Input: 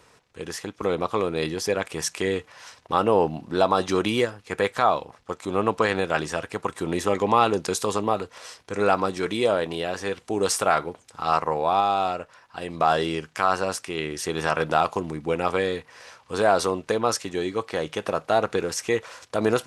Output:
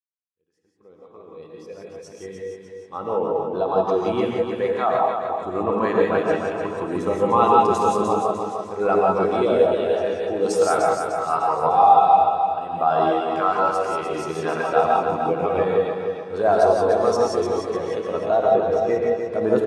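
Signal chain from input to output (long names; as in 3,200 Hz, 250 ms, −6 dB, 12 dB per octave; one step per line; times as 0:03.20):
fade in at the beginning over 5.45 s
0:18.36–0:19.25: parametric band 8,700 Hz −12 dB 1.7 octaves
on a send: repeating echo 300 ms, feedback 56%, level −4 dB
on the sum: reverb whose tail is shaped and stops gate 200 ms rising, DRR −1.5 dB
every bin expanded away from the loudest bin 1.5 to 1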